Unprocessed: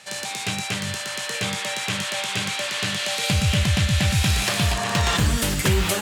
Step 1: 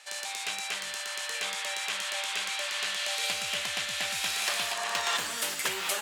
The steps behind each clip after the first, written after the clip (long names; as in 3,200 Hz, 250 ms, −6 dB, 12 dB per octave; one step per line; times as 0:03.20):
high-pass filter 660 Hz 12 dB per octave
level −5.5 dB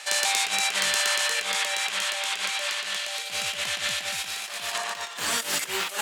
compressor whose output falls as the input rises −36 dBFS, ratio −0.5
level +8.5 dB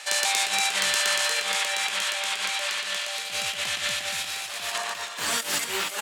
single-tap delay 306 ms −10.5 dB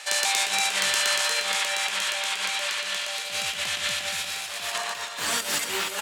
convolution reverb, pre-delay 130 ms, DRR 12.5 dB